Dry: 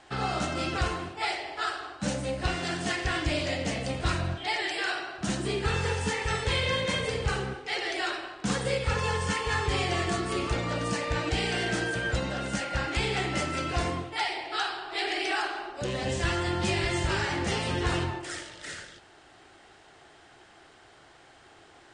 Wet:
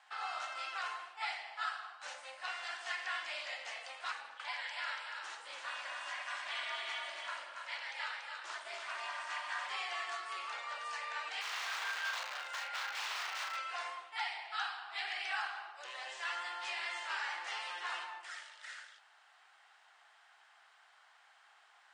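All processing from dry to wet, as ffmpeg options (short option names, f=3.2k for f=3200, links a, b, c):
-filter_complex "[0:a]asettb=1/sr,asplit=3[a][b][c];[a]atrim=end=4.114[d];[b]atrim=start=4.11:end=9.7,asetpts=PTS-STARTPTS,afade=t=in:d=0.004:c=qsin,afade=t=out:st=5.586:d=0.004:c=qsin,aeval=exprs='val(0)*sin(2*PI*140*n/s)':c=same,aecho=1:1:284:0.596,atrim=end_sample=246519[e];[c]atrim=start=9.696[f];[d][e]acrossfade=d=0.004:c1=hsin:c2=qsin[g];[g][f]acrossfade=d=0.004:c1=qsin:c2=hsin,asettb=1/sr,asplit=3[h][i][j];[h]atrim=end=11.414[k];[i]atrim=start=11.41:end=13.57,asetpts=PTS-STARTPTS,afade=t=in:d=0.004:c=qsin,afade=t=out:st=2.156:d=0.004:c=qsin,aeval=exprs='(mod(16.8*val(0)+1,2)-1)/16.8':c=same,asplit=2[l][m];[m]adelay=36,volume=-4dB[n];[l][n]amix=inputs=2:normalize=0,atrim=end_sample=95256[o];[j]atrim=start=13.566[p];[k][o]acrossfade=d=0.004:c1=hsin:c2=qsin[q];[q][p]acrossfade=d=0.004:c1=qsin:c2=hsin,acrossover=split=6800[r][s];[s]acompressor=threshold=-52dB:ratio=4:attack=1:release=60[t];[r][t]amix=inputs=2:normalize=0,highpass=f=890:w=0.5412,highpass=f=890:w=1.3066,equalizer=f=8.5k:t=o:w=2.7:g=-7,volume=-5dB"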